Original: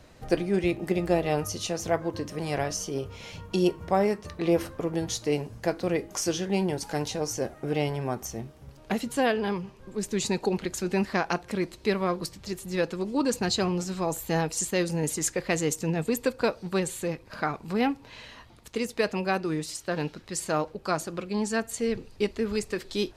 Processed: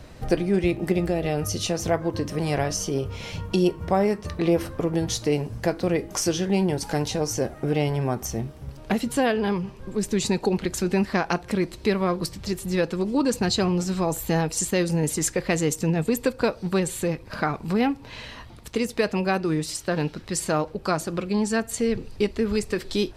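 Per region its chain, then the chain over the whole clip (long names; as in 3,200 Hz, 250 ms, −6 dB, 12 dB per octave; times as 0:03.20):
0:01.06–0:01.66: parametric band 1,000 Hz −8.5 dB 0.34 octaves + downward compressor 2 to 1, threshold −26 dBFS
whole clip: low-shelf EQ 200 Hz +5.5 dB; notch filter 6,700 Hz, Q 20; downward compressor 1.5 to 1, threshold −31 dBFS; level +6 dB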